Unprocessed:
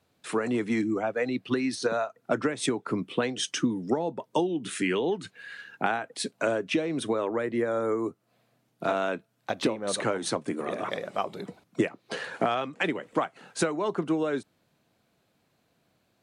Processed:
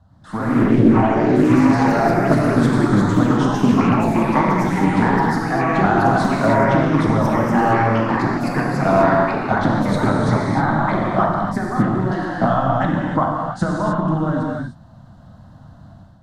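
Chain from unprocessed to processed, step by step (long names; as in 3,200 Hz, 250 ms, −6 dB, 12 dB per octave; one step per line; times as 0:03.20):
mu-law and A-law mismatch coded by mu
RIAA equalisation playback
reverb whose tail is shaped and stops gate 330 ms flat, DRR −2.5 dB
automatic gain control gain up to 9 dB
high-shelf EQ 8,500 Hz −11 dB
phaser with its sweep stopped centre 990 Hz, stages 4
delay with pitch and tempo change per echo 112 ms, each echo +3 semitones, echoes 3
highs frequency-modulated by the lows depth 0.28 ms
level +2 dB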